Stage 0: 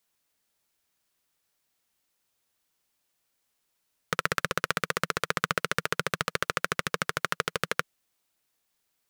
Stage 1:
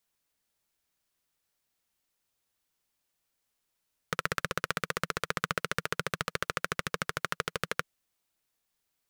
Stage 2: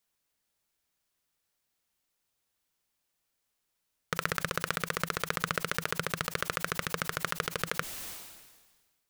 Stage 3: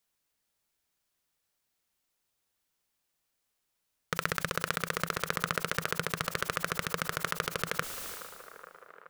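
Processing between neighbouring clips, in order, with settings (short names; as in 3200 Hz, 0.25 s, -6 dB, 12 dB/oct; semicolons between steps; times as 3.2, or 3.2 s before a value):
low shelf 95 Hz +6 dB; gain -4 dB
sustainer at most 41 dB/s
band-limited delay 0.423 s, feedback 75%, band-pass 750 Hz, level -13.5 dB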